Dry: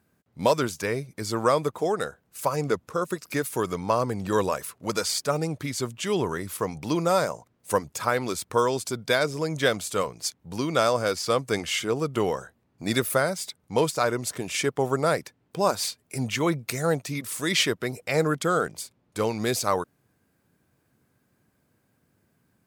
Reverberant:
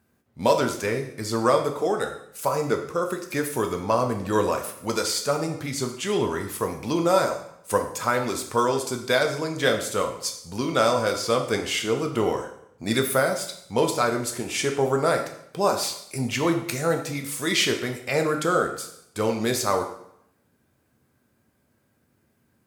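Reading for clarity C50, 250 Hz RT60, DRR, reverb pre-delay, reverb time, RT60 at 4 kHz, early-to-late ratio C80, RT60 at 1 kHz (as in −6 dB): 8.5 dB, 0.70 s, 3.5 dB, 4 ms, 0.70 s, 0.65 s, 11.0 dB, 0.70 s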